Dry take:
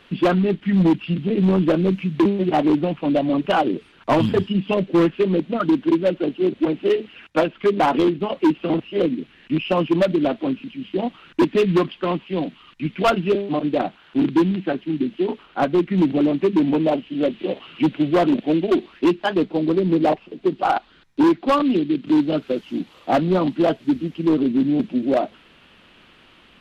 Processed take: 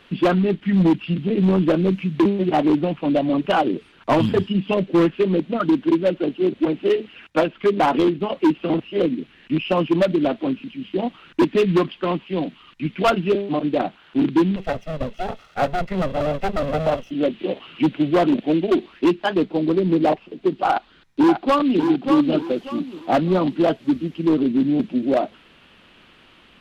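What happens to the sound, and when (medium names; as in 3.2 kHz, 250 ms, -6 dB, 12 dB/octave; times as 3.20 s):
14.56–17.11 s: comb filter that takes the minimum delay 1.5 ms
20.69–21.83 s: echo throw 590 ms, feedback 30%, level -6 dB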